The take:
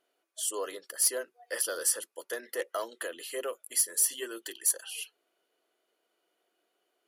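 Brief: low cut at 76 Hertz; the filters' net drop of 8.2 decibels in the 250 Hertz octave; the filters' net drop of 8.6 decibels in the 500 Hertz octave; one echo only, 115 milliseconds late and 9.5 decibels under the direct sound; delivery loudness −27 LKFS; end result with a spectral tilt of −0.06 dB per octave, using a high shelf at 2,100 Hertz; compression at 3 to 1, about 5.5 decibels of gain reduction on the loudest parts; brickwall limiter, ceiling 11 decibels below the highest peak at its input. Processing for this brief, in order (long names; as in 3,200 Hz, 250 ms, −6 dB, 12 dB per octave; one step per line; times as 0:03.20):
high-pass filter 76 Hz
parametric band 250 Hz −8 dB
parametric band 500 Hz −7.5 dB
high-shelf EQ 2,100 Hz −7.5 dB
downward compressor 3 to 1, threshold −36 dBFS
brickwall limiter −36 dBFS
single-tap delay 115 ms −9.5 dB
level +19 dB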